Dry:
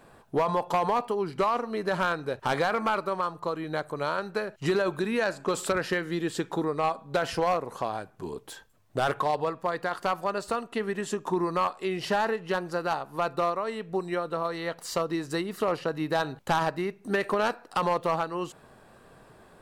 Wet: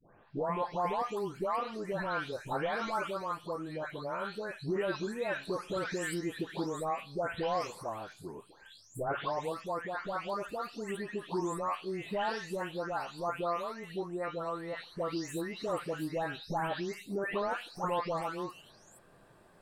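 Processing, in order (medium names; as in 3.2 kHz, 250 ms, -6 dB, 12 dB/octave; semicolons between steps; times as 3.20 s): delay that grows with frequency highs late, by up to 463 ms; trim -6 dB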